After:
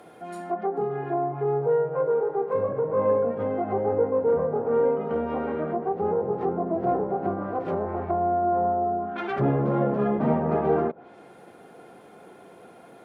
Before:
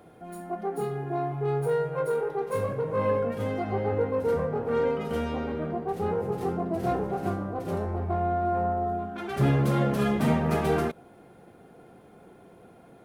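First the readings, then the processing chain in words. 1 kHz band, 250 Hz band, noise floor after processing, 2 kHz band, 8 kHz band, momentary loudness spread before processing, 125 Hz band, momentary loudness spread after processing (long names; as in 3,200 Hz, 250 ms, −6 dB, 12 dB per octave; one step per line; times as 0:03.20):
+3.5 dB, +1.0 dB, −50 dBFS, −3.0 dB, can't be measured, 7 LU, −3.5 dB, 6 LU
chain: high-pass filter 420 Hz 6 dB per octave
treble cut that deepens with the level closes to 840 Hz, closed at −29 dBFS
level +7 dB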